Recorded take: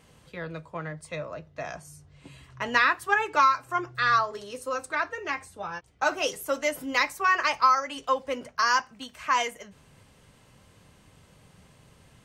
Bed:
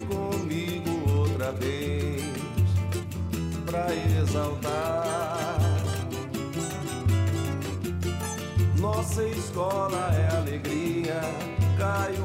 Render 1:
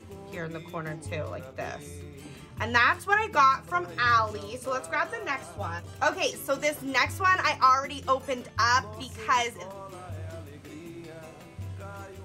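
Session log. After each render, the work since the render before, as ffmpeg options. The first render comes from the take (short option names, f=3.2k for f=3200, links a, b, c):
-filter_complex "[1:a]volume=-15dB[a];[0:a][a]amix=inputs=2:normalize=0"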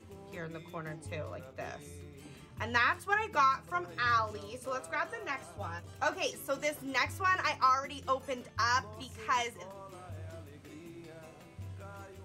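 -af "volume=-6.5dB"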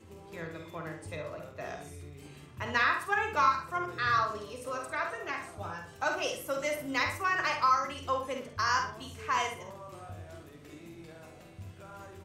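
-filter_complex "[0:a]asplit=2[a][b];[b]adelay=48,volume=-6.5dB[c];[a][c]amix=inputs=2:normalize=0,asplit=2[d][e];[e]adelay=70,lowpass=f=3.7k:p=1,volume=-7dB,asplit=2[f][g];[g]adelay=70,lowpass=f=3.7k:p=1,volume=0.29,asplit=2[h][i];[i]adelay=70,lowpass=f=3.7k:p=1,volume=0.29,asplit=2[j][k];[k]adelay=70,lowpass=f=3.7k:p=1,volume=0.29[l];[f][h][j][l]amix=inputs=4:normalize=0[m];[d][m]amix=inputs=2:normalize=0"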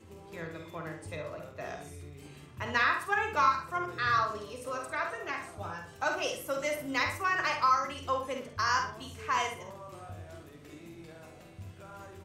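-af anull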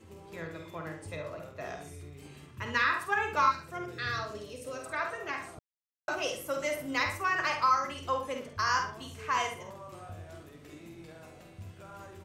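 -filter_complex "[0:a]asettb=1/sr,asplit=3[a][b][c];[a]atrim=end=2.514[d];[b]atrim=start=2.51:end=2.93,asetpts=PTS-STARTPTS,afade=t=in:d=0.004:c=qsin,afade=t=out:st=0.416:d=0.004:c=qsin,equalizer=f=710:t=o:w=0.33:g=-14[e];[c]atrim=start=2.926[f];[d][e]acrossfade=d=0.004:c1=hsin:c2=qsin[g];[g][f]acrossfade=d=0.004:c1=qsin:c2=hsin,asettb=1/sr,asplit=3[h][i][j];[h]atrim=end=3.514[k];[i]atrim=start=3.51:end=4.86,asetpts=PTS-STARTPTS,afade=t=in:d=0.004:c=qsin,afade=t=out:st=1.346:d=0.004:c=qsin,equalizer=f=1.1k:w=1.8:g=-12[l];[j]atrim=start=4.856[m];[k][l]acrossfade=d=0.004:c1=hsin:c2=qsin[n];[n][m]acrossfade=d=0.004:c1=qsin:c2=hsin,asplit=3[o][p][q];[o]atrim=end=5.59,asetpts=PTS-STARTPTS,afade=t=out:st=5.586:d=0.004:c=hsin[r];[p]atrim=start=5.59:end=6.08,asetpts=PTS-STARTPTS,volume=0[s];[q]atrim=start=6.08,asetpts=PTS-STARTPTS,afade=t=in:d=0.004:c=hsin[t];[r][s][t]concat=n=3:v=0:a=1"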